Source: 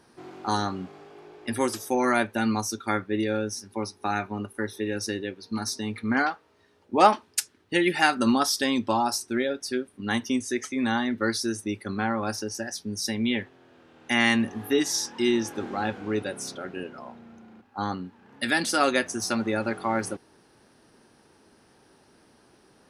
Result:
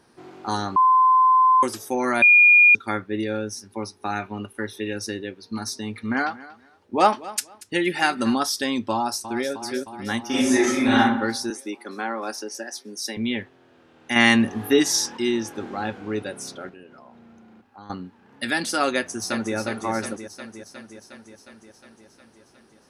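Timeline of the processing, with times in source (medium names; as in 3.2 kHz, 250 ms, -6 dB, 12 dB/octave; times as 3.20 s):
0.76–1.63 s: bleep 1.03 kHz -12.5 dBFS
2.22–2.75 s: bleep 2.43 kHz -9.5 dBFS
4.22–4.93 s: peaking EQ 2.9 kHz +7 dB 0.8 oct
5.78–8.36 s: feedback delay 235 ms, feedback 21%, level -18.5 dB
8.93–9.52 s: echo throw 310 ms, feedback 75%, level -10.5 dB
10.27–10.97 s: reverb throw, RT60 0.81 s, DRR -9.5 dB
11.50–13.17 s: high-pass 270 Hz 24 dB/octave
14.16–15.17 s: gain +5.5 dB
16.69–17.90 s: compression 2.5:1, threshold -46 dBFS
18.94–19.55 s: echo throw 360 ms, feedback 70%, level -7.5 dB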